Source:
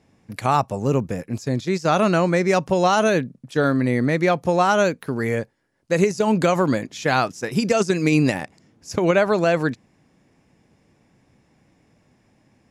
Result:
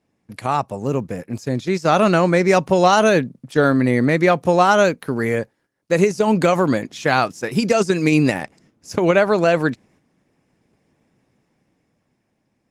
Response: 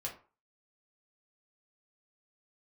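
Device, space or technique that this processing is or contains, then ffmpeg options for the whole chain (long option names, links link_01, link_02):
video call: -af "highpass=frequency=100:poles=1,dynaudnorm=framelen=100:gausssize=31:maxgain=16dB,agate=range=-7dB:threshold=-51dB:ratio=16:detection=peak,volume=-1dB" -ar 48000 -c:a libopus -b:a 24k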